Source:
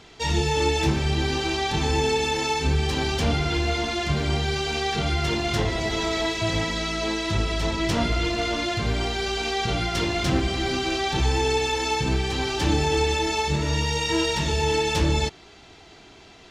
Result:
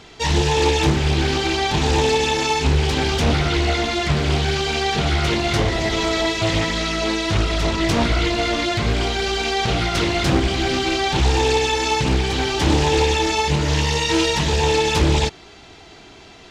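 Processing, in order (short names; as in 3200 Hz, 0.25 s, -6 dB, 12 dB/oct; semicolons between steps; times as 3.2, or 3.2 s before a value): Doppler distortion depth 0.44 ms; gain +5 dB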